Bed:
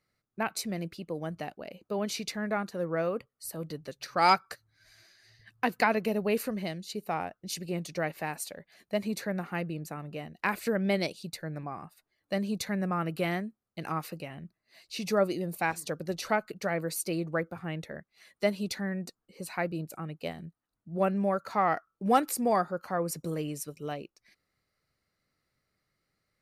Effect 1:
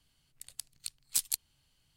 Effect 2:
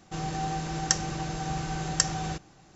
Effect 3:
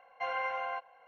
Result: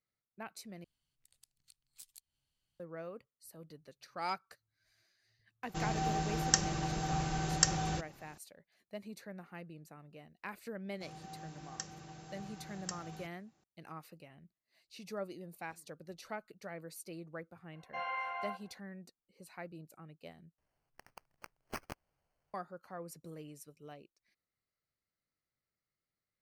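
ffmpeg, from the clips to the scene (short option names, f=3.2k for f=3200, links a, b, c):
-filter_complex "[1:a]asplit=2[a][b];[2:a]asplit=2[c][d];[0:a]volume=-15dB[e];[a]acompressor=threshold=-46dB:ratio=1.5:attack=0.12:release=196:knee=1:detection=peak[f];[d]highpass=83[g];[3:a]asplit=2[h][i];[i]adelay=43,volume=-2.5dB[j];[h][j]amix=inputs=2:normalize=0[k];[b]acrusher=samples=12:mix=1:aa=0.000001[l];[e]asplit=3[m][n][o];[m]atrim=end=0.844[p];[f]atrim=end=1.96,asetpts=PTS-STARTPTS,volume=-14dB[q];[n]atrim=start=2.796:end=20.584[r];[l]atrim=end=1.96,asetpts=PTS-STARTPTS,volume=-12dB[s];[o]atrim=start=22.536[t];[c]atrim=end=2.75,asetpts=PTS-STARTPTS,volume=-3dB,afade=t=in:d=0.004:c=hsin,afade=t=out:st=2.746:d=0.004:c=hsin,adelay=5630[u];[g]atrim=end=2.75,asetpts=PTS-STARTPTS,volume=-18dB,afade=t=in:d=0.004:c=hsin,afade=t=out:st=2.746:d=0.004:c=hsin,adelay=10890[v];[k]atrim=end=1.07,asetpts=PTS-STARTPTS,volume=-7dB,afade=t=in:d=0.004:c=hsin,afade=t=out:st=1.066:d=0.004:c=hsin,adelay=17730[w];[p][q]acrossfade=d=0.004:c1=hsin:c2=hsin[x];[x][r]acrossfade=d=0.004:c1=hsin:c2=hsin[y];[y][s]acrossfade=d=0.004:c1=hsin:c2=hsin[z];[z][t]acrossfade=d=0.004:c1=hsin:c2=hsin[aa];[aa][u][v][w]amix=inputs=4:normalize=0"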